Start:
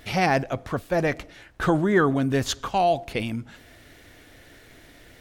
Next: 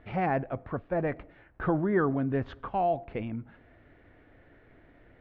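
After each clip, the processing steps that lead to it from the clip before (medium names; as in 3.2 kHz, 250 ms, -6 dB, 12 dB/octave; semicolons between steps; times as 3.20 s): Bessel low-pass 1.5 kHz, order 4; trim -5.5 dB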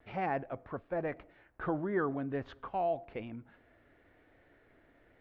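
tone controls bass -6 dB, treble +4 dB; vibrato 0.98 Hz 35 cents; trim -5 dB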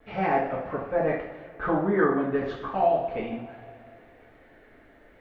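two-slope reverb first 0.57 s, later 2.8 s, from -17 dB, DRR -6 dB; trim +3 dB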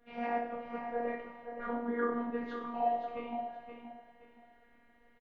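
robot voice 237 Hz; feedback delay 522 ms, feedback 27%, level -8 dB; trim -8 dB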